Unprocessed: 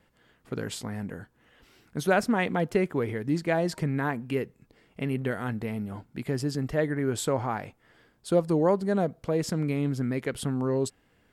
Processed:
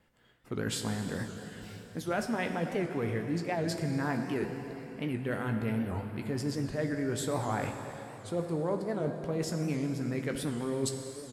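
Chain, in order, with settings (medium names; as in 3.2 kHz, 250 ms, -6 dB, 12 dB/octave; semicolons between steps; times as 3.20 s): spectral noise reduction 11 dB; reverse; compression 4:1, threshold -40 dBFS, peak gain reduction 18.5 dB; reverse; doubling 18 ms -10.5 dB; plate-style reverb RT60 3.9 s, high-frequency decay 0.9×, DRR 5 dB; warped record 78 rpm, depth 160 cents; trim +7 dB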